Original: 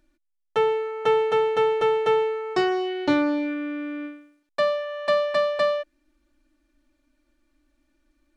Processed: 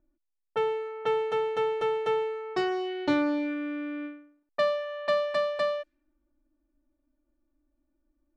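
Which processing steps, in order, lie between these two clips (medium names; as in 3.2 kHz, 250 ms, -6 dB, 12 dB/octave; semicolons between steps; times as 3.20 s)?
gain riding within 4 dB 2 s; level-controlled noise filter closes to 840 Hz, open at -22 dBFS; trim -5.5 dB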